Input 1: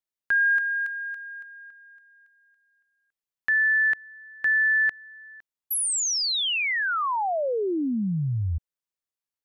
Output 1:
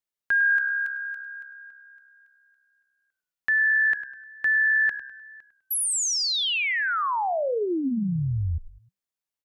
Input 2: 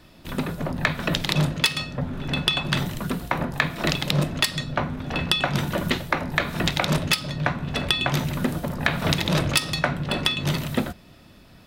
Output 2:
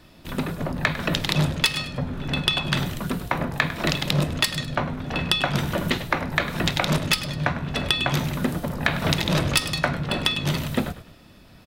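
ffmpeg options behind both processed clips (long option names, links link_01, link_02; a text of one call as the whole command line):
ffmpeg -i in.wav -filter_complex "[0:a]asplit=4[link_01][link_02][link_03][link_04];[link_02]adelay=101,afreqshift=-66,volume=-13.5dB[link_05];[link_03]adelay=202,afreqshift=-132,volume=-22.6dB[link_06];[link_04]adelay=303,afreqshift=-198,volume=-31.7dB[link_07];[link_01][link_05][link_06][link_07]amix=inputs=4:normalize=0" out.wav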